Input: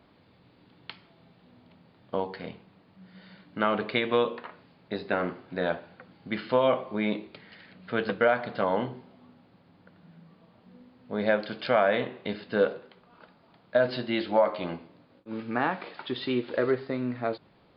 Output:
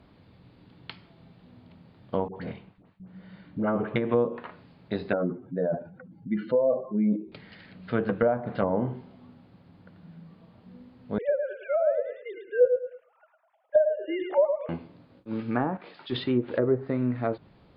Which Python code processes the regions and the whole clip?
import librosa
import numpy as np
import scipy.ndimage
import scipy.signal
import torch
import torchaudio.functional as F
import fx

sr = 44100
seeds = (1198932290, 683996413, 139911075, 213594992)

y = fx.chain(x, sr, fx.gate_hold(open_db=-46.0, close_db=-52.0, hold_ms=71.0, range_db=-21, attack_ms=1.4, release_ms=100.0),
    fx.air_absorb(metres=250.0),
    fx.dispersion(late='highs', ms=80.0, hz=830.0), at=(2.28, 3.96))
y = fx.chain(y, sr, fx.spec_expand(power=2.2),
    fx.sustainer(db_per_s=150.0), at=(5.13, 7.32))
y = fx.chain(y, sr, fx.sine_speech(),
    fx.env_lowpass(base_hz=2100.0, full_db=-16.5),
    fx.echo_feedback(ms=106, feedback_pct=26, wet_db=-6), at=(11.18, 14.69))
y = fx.chain(y, sr, fx.high_shelf(hz=3900.0, db=8.0),
    fx.transient(attack_db=-5, sustain_db=3),
    fx.band_widen(depth_pct=100), at=(15.77, 16.24))
y = fx.env_lowpass_down(y, sr, base_hz=740.0, full_db=-22.0)
y = fx.low_shelf(y, sr, hz=180.0, db=11.0)